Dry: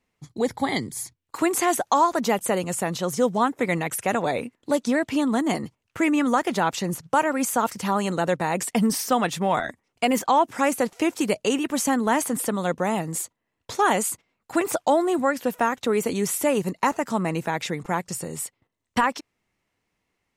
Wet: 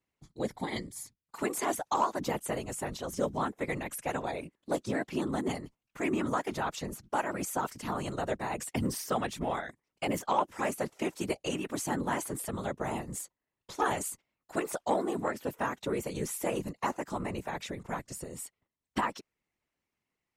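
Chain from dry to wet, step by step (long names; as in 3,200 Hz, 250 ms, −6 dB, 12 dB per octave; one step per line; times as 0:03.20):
random phases in short frames
harmonic generator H 3 −22 dB, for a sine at −5.5 dBFS
level −8 dB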